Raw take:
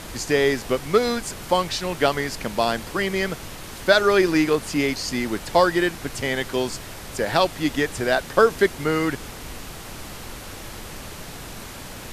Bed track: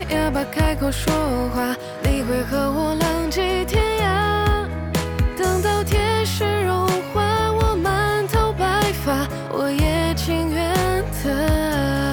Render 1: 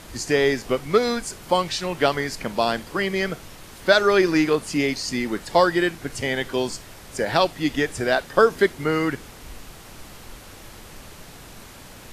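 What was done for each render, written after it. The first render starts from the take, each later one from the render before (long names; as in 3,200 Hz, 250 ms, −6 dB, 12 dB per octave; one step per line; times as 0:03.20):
noise reduction from a noise print 6 dB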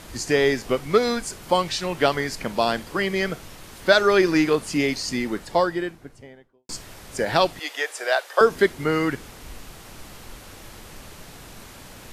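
0:05.01–0:06.69: fade out and dull
0:07.59–0:08.41: inverse Chebyshev high-pass filter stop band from 150 Hz, stop band 60 dB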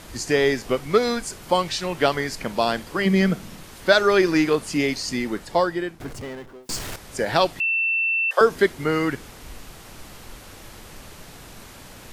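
0:03.05–0:03.63: parametric band 200 Hz +12.5 dB
0:06.00–0:06.96: power curve on the samples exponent 0.5
0:07.60–0:08.31: beep over 2,680 Hz −19 dBFS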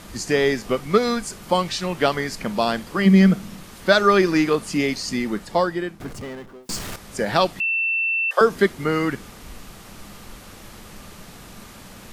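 hollow resonant body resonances 200/1,200 Hz, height 8 dB, ringing for 75 ms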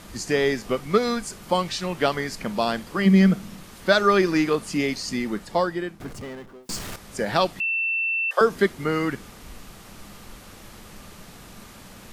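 level −2.5 dB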